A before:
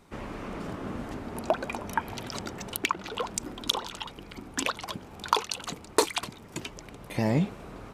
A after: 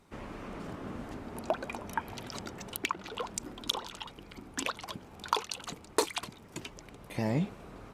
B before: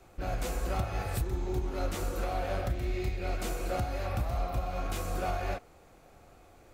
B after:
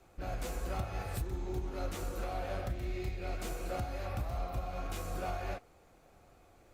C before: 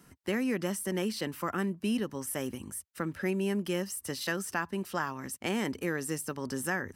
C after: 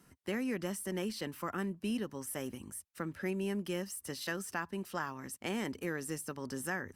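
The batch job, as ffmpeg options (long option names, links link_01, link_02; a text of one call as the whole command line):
ffmpeg -i in.wav -af "volume=-5dB" -ar 48000 -c:a libopus -b:a 64k out.opus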